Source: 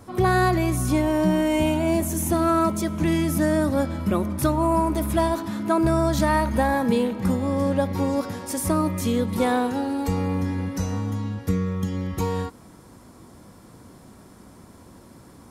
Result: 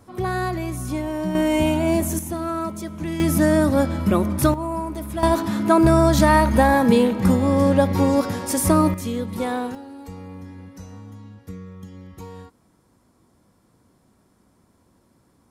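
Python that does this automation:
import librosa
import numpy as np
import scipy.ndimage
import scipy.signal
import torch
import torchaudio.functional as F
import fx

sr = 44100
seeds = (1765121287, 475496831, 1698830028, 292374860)

y = fx.gain(x, sr, db=fx.steps((0.0, -5.0), (1.35, 2.0), (2.19, -6.0), (3.2, 4.0), (4.54, -6.0), (5.23, 5.5), (8.94, -3.5), (9.75, -13.0)))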